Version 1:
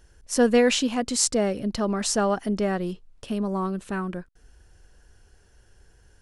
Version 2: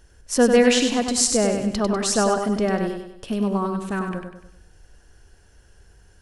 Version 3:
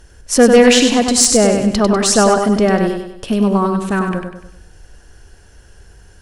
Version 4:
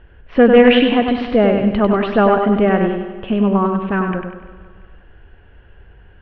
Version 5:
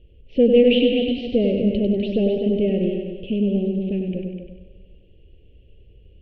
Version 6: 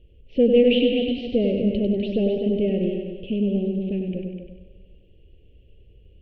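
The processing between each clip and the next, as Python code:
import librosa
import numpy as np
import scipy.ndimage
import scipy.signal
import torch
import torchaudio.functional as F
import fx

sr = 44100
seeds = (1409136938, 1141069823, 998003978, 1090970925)

y1 = fx.echo_feedback(x, sr, ms=98, feedback_pct=43, wet_db=-6.0)
y1 = y1 * 10.0 ** (2.5 / 20.0)
y2 = fx.fold_sine(y1, sr, drive_db=6, ceiling_db=-1.0)
y2 = y2 * 10.0 ** (-1.0 / 20.0)
y3 = scipy.signal.sosfilt(scipy.signal.butter(8, 3100.0, 'lowpass', fs=sr, output='sos'), y2)
y3 = fx.echo_feedback(y3, sr, ms=171, feedback_pct=58, wet_db=-17)
y3 = y3 * 10.0 ** (-1.0 / 20.0)
y4 = scipy.signal.sosfilt(scipy.signal.ellip(3, 1.0, 60, [530.0, 2700.0], 'bandstop', fs=sr, output='sos'), y3)
y4 = y4 + 10.0 ** (-8.0 / 20.0) * np.pad(y4, (int(251 * sr / 1000.0), 0))[:len(y4)]
y4 = y4 * 10.0 ** (-4.5 / 20.0)
y5 = fx.notch(y4, sr, hz=1400.0, q=9.3)
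y5 = y5 * 10.0 ** (-2.0 / 20.0)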